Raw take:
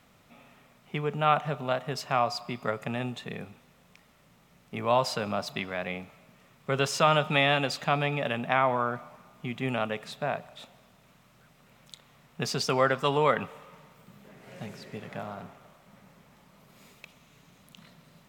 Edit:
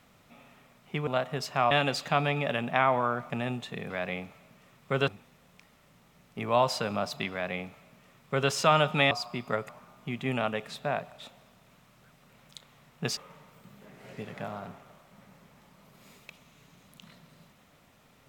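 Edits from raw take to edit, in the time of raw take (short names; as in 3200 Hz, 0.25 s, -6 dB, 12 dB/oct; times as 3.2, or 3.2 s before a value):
1.07–1.62 cut
2.26–2.84 swap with 7.47–9.06
5.68–6.86 copy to 3.44
12.54–13.6 cut
14.56–14.88 cut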